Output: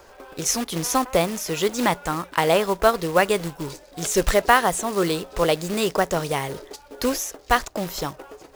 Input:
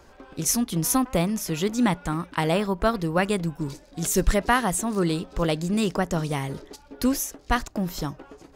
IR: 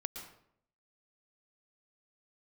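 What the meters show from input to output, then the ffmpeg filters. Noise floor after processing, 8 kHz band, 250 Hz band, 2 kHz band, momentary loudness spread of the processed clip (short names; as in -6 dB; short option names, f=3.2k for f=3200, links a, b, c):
-50 dBFS, +1.5 dB, -3.0 dB, +5.0 dB, 13 LU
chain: -filter_complex "[0:a]acrossover=split=7200[a][b];[b]acompressor=threshold=-36dB:ratio=4:attack=1:release=60[c];[a][c]amix=inputs=2:normalize=0,acrusher=bits=4:mode=log:mix=0:aa=0.000001,lowshelf=f=340:t=q:w=1.5:g=-7,volume=4.5dB"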